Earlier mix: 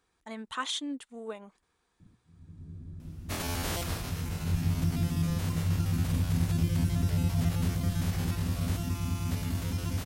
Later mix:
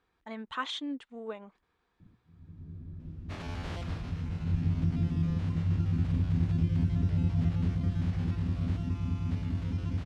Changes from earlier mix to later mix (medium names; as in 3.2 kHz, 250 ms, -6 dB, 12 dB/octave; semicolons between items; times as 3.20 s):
second sound -6.5 dB; master: add low-pass 3.4 kHz 12 dB/octave